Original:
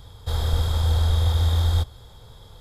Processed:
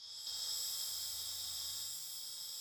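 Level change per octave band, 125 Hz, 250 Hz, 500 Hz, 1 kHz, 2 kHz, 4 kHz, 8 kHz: under -40 dB, under -30 dB, -32.5 dB, -26.0 dB, -19.0 dB, -6.5 dB, +2.5 dB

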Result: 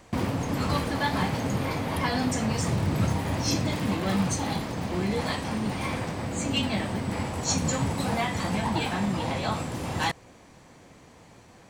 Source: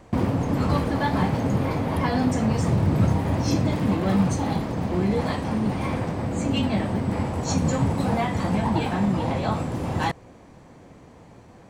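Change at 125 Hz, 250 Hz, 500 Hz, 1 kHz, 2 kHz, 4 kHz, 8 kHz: -5.5, -5.0, -4.5, -2.5, +1.0, +4.0, +5.0 dB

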